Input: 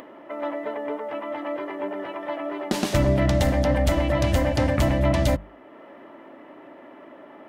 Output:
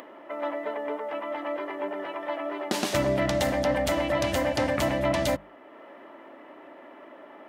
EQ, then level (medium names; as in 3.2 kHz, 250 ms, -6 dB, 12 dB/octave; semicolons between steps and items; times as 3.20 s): high-pass 380 Hz 6 dB/octave; 0.0 dB